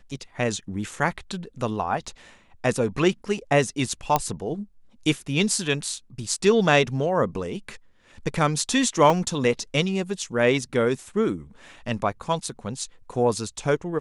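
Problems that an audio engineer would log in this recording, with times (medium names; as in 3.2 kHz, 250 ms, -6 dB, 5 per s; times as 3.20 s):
4.16 s: pop -6 dBFS
9.10 s: dropout 2.6 ms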